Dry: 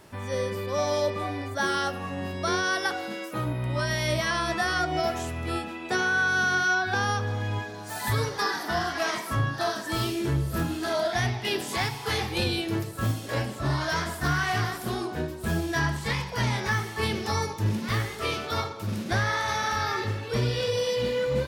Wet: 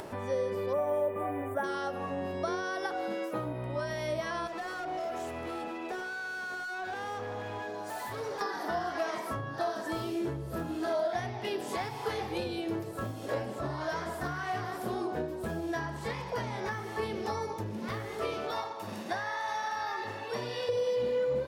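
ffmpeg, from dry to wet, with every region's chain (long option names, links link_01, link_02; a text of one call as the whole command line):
ffmpeg -i in.wav -filter_complex "[0:a]asettb=1/sr,asplit=3[link_01][link_02][link_03];[link_01]atrim=end=0.734[link_04];[link_02]atrim=start=0.73:end=1.64,asetpts=PTS-STARTPTS,afade=type=in:duration=0.004:curve=qsin,afade=type=out:start_time=0.906:duration=0.004:curve=qsin,acrusher=bits=8:mode=log:mix=0:aa=0.000001,asuperstop=centerf=4700:order=4:qfactor=0.79,highshelf=frequency=9600:gain=11[link_05];[link_03]atrim=start=1.636[link_06];[link_04][link_05]acrossfade=duration=0.004:curve1=hsin:curve2=qsin[link_07];[link_07][link_06]acrossfade=duration=0.004:curve1=qsin:curve2=hsin,asettb=1/sr,asplit=3[link_08][link_09][link_10];[link_08]atrim=end=4.474[link_11];[link_09]atrim=start=4.47:end=8.41,asetpts=PTS-STARTPTS,afade=type=in:duration=0.004:curve=qsin,afade=type=out:start_time=3.936:duration=0.004:curve=qsin,lowshelf=frequency=180:gain=-9.5,acompressor=threshold=-30dB:ratio=5:attack=3.2:release=140:knee=1:detection=peak,asoftclip=type=hard:threshold=-35dB[link_12];[link_10]atrim=start=8.406[link_13];[link_11][link_12]acrossfade=duration=0.004:curve1=hsin:curve2=qsin[link_14];[link_14][link_13]acrossfade=duration=0.004:curve1=qsin:curve2=hsin,asettb=1/sr,asplit=3[link_15][link_16][link_17];[link_15]atrim=end=18.514[link_18];[link_16]atrim=start=18.51:end=20.69,asetpts=PTS-STARTPTS,afade=type=in:duration=0.004:curve=qsin,afade=type=out:start_time=2.176:duration=0.004:curve=qsin,highpass=frequency=580:poles=1,aecho=1:1:1.1:0.41,atrim=end_sample=96138[link_19];[link_17]atrim=start=20.686[link_20];[link_18][link_19]acrossfade=duration=0.004:curve1=hsin:curve2=qsin[link_21];[link_21][link_20]acrossfade=duration=0.004:curve1=qsin:curve2=hsin,acompressor=threshold=-30dB:ratio=6,equalizer=frequency=550:width=0.49:gain=12.5,acompressor=mode=upward:threshold=-26dB:ratio=2.5,volume=-8.5dB" out.wav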